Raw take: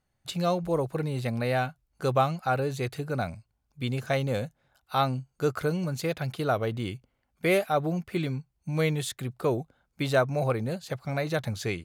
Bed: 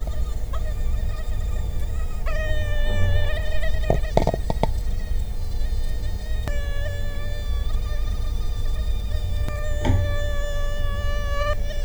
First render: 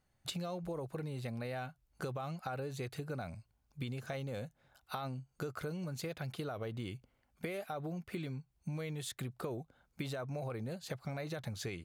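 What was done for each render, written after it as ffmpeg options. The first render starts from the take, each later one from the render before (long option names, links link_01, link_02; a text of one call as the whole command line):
ffmpeg -i in.wav -af "alimiter=limit=-21dB:level=0:latency=1:release=24,acompressor=threshold=-37dB:ratio=12" out.wav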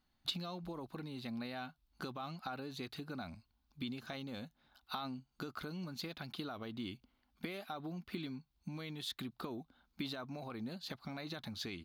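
ffmpeg -i in.wav -af "equalizer=frequency=125:width_type=o:width=1:gain=-12,equalizer=frequency=250:width_type=o:width=1:gain=8,equalizer=frequency=500:width_type=o:width=1:gain=-11,equalizer=frequency=1000:width_type=o:width=1:gain=3,equalizer=frequency=2000:width_type=o:width=1:gain=-4,equalizer=frequency=4000:width_type=o:width=1:gain=9,equalizer=frequency=8000:width_type=o:width=1:gain=-12" out.wav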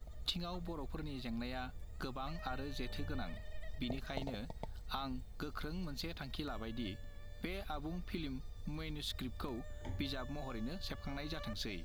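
ffmpeg -i in.wav -i bed.wav -filter_complex "[1:a]volume=-24dB[link_01];[0:a][link_01]amix=inputs=2:normalize=0" out.wav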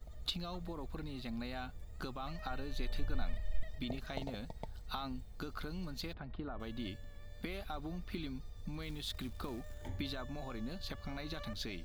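ffmpeg -i in.wav -filter_complex "[0:a]asettb=1/sr,asplit=3[link_01][link_02][link_03];[link_01]atrim=end=2.354[link_04];[link_02]atrim=start=2.35:end=3.63,asetpts=PTS-STARTPTS,afade=type=in:duration=0.004:curve=qsin,afade=type=out:start_time=1.276:duration=0.004:curve=qsin,asubboost=boost=10.5:cutoff=64[link_05];[link_03]atrim=start=3.626[link_06];[link_04][link_05]acrossfade=duration=0.004:curve1=hsin:curve2=qsin[link_07];[link_07][link_06]acrossfade=duration=0.004:curve1=qsin:curve2=hsin,asettb=1/sr,asplit=3[link_08][link_09][link_10];[link_08]atrim=end=6.134[link_11];[link_09]atrim=start=6.13:end=6.6,asetpts=PTS-STARTPTS,afade=type=in:duration=0.004:curve=qsin,afade=type=out:start_time=0.466:duration=0.004:curve=qsin,lowpass=1400[link_12];[link_10]atrim=start=6.596[link_13];[link_11][link_12]acrossfade=duration=0.004:curve1=hsin:curve2=qsin[link_14];[link_14][link_13]acrossfade=duration=0.004:curve1=qsin:curve2=hsin,asettb=1/sr,asplit=3[link_15][link_16][link_17];[link_15]atrim=end=8.824[link_18];[link_16]atrim=start=8.82:end=9.88,asetpts=PTS-STARTPTS,afade=type=in:duration=0.004:curve=qsin,afade=type=out:start_time=1.056:duration=0.004:curve=qsin,acrusher=bits=5:mode=log:mix=0:aa=0.000001[link_19];[link_17]atrim=start=9.876[link_20];[link_18][link_19]acrossfade=duration=0.004:curve1=hsin:curve2=qsin[link_21];[link_21][link_20]acrossfade=duration=0.004:curve1=qsin:curve2=hsin" out.wav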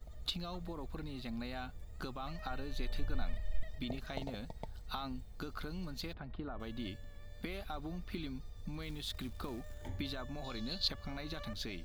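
ffmpeg -i in.wav -filter_complex "[0:a]asettb=1/sr,asplit=3[link_01][link_02][link_03];[link_01]atrim=end=10.444[link_04];[link_02]atrim=start=10.44:end=10.88,asetpts=PTS-STARTPTS,afade=type=in:duration=0.004:curve=qsin,afade=type=out:start_time=0.436:duration=0.004:curve=qsin,equalizer=frequency=4200:width_type=o:width=0.95:gain=15[link_05];[link_03]atrim=start=10.876[link_06];[link_04][link_05]acrossfade=duration=0.004:curve1=hsin:curve2=qsin[link_07];[link_07][link_06]acrossfade=duration=0.004:curve1=qsin:curve2=hsin" out.wav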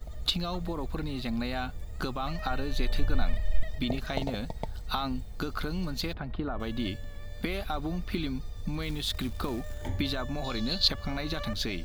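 ffmpeg -i in.wav -af "volume=10dB" out.wav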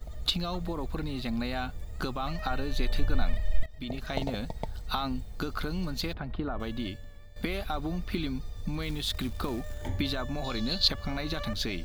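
ffmpeg -i in.wav -filter_complex "[0:a]asplit=3[link_01][link_02][link_03];[link_01]atrim=end=3.66,asetpts=PTS-STARTPTS,afade=type=out:start_time=3.656:duration=0.004:curve=hsin:silence=0.133352[link_04];[link_02]atrim=start=3.66:end=7.36,asetpts=PTS-STARTPTS,afade=type=in:duration=0.52:silence=0.133352,afade=type=out:start_time=2.91:duration=0.79:silence=0.237137[link_05];[link_03]atrim=start=7.36,asetpts=PTS-STARTPTS,afade=type=in:duration=0.004:curve=hsin:silence=0.237137[link_06];[link_04][link_05][link_06]concat=n=3:v=0:a=1" out.wav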